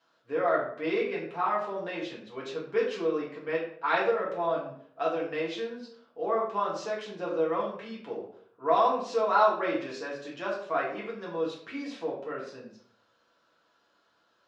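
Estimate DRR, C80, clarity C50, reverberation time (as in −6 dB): −5.5 dB, 8.5 dB, 5.0 dB, 0.60 s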